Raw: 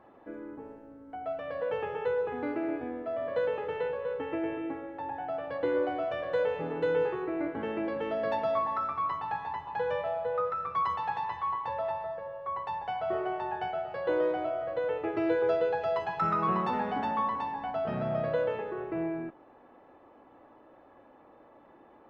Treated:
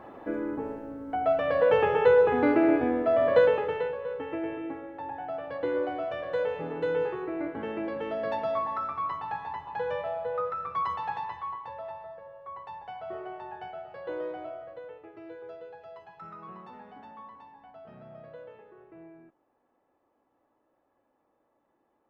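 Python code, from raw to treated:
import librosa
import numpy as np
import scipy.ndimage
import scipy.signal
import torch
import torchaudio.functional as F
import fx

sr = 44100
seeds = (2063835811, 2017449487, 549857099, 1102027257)

y = fx.gain(x, sr, db=fx.line((3.36, 10.5), (3.96, -0.5), (11.15, -0.5), (11.73, -7.0), (14.52, -7.0), (15.09, -17.0)))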